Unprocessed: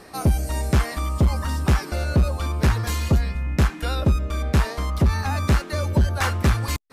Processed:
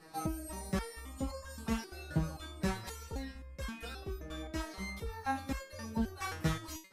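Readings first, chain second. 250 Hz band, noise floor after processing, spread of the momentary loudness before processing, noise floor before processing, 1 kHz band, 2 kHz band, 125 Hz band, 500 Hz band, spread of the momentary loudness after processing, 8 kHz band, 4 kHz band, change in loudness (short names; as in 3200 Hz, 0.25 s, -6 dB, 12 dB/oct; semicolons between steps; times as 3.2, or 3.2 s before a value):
-11.5 dB, -53 dBFS, 3 LU, -37 dBFS, -12.5 dB, -13.5 dB, -20.5 dB, -14.0 dB, 7 LU, -12.5 dB, -14.0 dB, -16.5 dB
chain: stepped resonator 3.8 Hz 160–540 Hz; gain +1 dB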